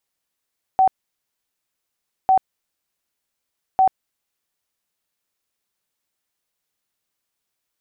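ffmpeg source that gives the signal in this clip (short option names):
-f lavfi -i "aevalsrc='0.282*sin(2*PI*760*mod(t,1.5))*lt(mod(t,1.5),66/760)':d=4.5:s=44100"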